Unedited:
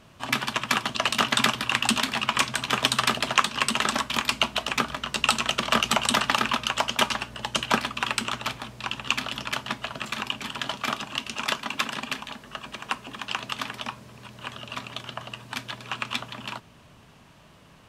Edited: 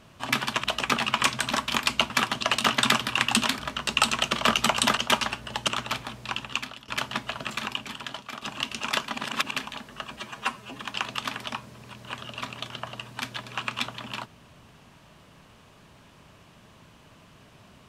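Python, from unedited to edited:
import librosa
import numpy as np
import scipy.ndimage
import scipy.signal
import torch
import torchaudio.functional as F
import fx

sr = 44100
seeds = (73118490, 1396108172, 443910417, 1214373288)

y = fx.edit(x, sr, fx.swap(start_s=0.64, length_s=1.49, other_s=4.52, other_length_s=0.34),
    fx.cut(start_s=2.66, length_s=1.27),
    fx.cut(start_s=6.24, length_s=0.62),
    fx.cut(start_s=7.57, length_s=0.66),
    fx.fade_out_to(start_s=8.86, length_s=0.57, floor_db=-21.0),
    fx.fade_out_to(start_s=10.08, length_s=0.89, floor_db=-13.0),
    fx.reverse_span(start_s=11.69, length_s=0.38),
    fx.stretch_span(start_s=12.71, length_s=0.42, factor=1.5), tone=tone)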